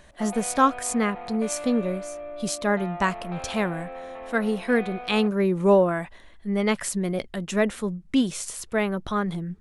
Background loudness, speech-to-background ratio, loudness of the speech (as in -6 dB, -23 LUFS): -37.5 LUFS, 12.0 dB, -25.5 LUFS